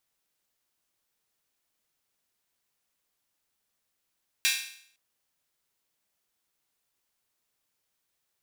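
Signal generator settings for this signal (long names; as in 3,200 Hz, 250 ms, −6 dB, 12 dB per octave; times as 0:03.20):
open synth hi-hat length 0.51 s, high-pass 2,300 Hz, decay 0.61 s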